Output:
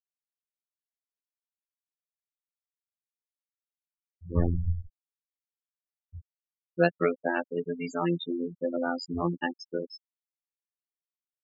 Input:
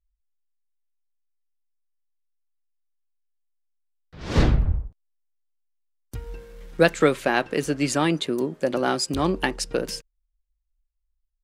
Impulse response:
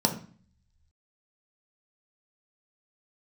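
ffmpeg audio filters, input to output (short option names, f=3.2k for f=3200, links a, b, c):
-filter_complex "[0:a]afftfilt=real='hypot(re,im)*cos(PI*b)':imag='0':win_size=2048:overlap=0.75,afftfilt=real='re*gte(hypot(re,im),0.0891)':imag='im*gte(hypot(re,im),0.0891)':win_size=1024:overlap=0.75,acrossover=split=5200[a][b];[b]acompressor=threshold=-49dB:ratio=4:attack=1:release=60[c];[a][c]amix=inputs=2:normalize=0,volume=-2.5dB"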